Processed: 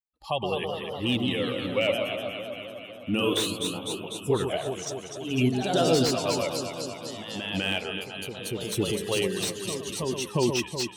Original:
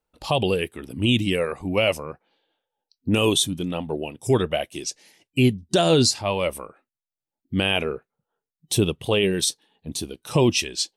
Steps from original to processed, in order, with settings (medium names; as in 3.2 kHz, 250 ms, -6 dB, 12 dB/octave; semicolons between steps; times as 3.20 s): expander on every frequency bin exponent 1.5; bass shelf 110 Hz -9 dB; on a send: echo whose repeats swap between lows and highs 125 ms, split 1.1 kHz, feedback 83%, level -6 dB; on the sum: ever faster or slower copies 227 ms, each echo +1 st, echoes 3, each echo -6 dB; slew-rate limiter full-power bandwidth 350 Hz; trim -3 dB